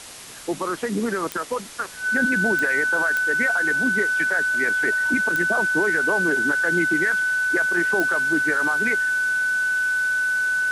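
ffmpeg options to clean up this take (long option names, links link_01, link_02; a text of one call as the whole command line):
ffmpeg -i in.wav -af "adeclick=threshold=4,bandreject=frequency=1500:width=30,afftdn=noise_reduction=30:noise_floor=-32" out.wav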